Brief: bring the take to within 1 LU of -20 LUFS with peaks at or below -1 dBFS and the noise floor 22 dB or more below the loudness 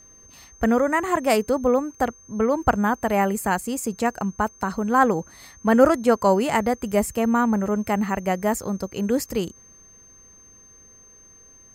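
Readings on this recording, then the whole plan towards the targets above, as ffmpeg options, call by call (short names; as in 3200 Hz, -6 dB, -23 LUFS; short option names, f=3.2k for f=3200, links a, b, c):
steady tone 6300 Hz; tone level -48 dBFS; loudness -22.5 LUFS; peak -2.5 dBFS; loudness target -20.0 LUFS
-> -af "bandreject=f=6.3k:w=30"
-af "volume=2.5dB,alimiter=limit=-1dB:level=0:latency=1"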